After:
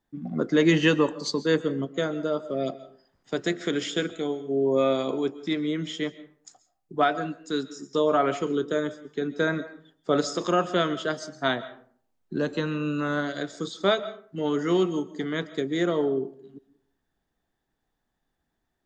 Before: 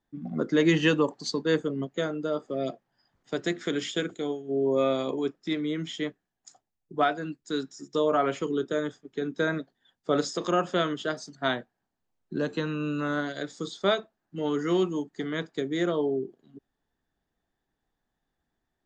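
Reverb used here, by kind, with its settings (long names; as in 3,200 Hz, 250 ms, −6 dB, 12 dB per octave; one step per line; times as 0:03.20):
comb and all-pass reverb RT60 0.52 s, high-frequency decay 0.55×, pre-delay 95 ms, DRR 15.5 dB
level +2 dB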